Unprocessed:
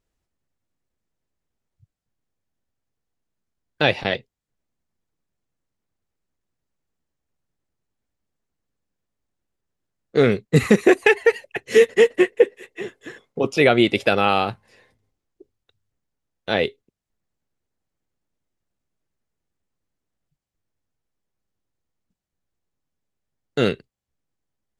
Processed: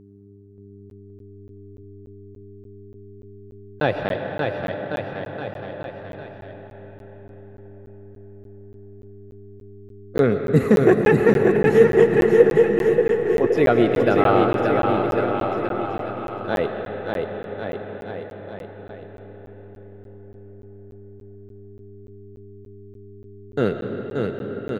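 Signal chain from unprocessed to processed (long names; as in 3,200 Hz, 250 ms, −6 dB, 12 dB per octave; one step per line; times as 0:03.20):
flat-topped bell 4,600 Hz −12 dB 2.6 octaves
hum with harmonics 100 Hz, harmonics 4, −47 dBFS −1 dB per octave
bouncing-ball delay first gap 580 ms, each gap 0.9×, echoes 5
on a send at −4 dB: convolution reverb RT60 5.4 s, pre-delay 65 ms
on the sum: regular buffer underruns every 0.29 s, samples 512, zero, from 0:00.90
level −1 dB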